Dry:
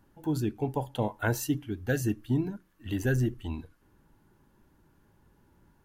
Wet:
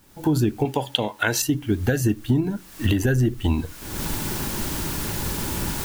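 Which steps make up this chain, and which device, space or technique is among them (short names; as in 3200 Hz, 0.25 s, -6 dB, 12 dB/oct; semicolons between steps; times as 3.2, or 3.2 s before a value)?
0.65–1.42 weighting filter D; cheap recorder with automatic gain (white noise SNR 33 dB; recorder AGC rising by 44 dB/s); gain +4 dB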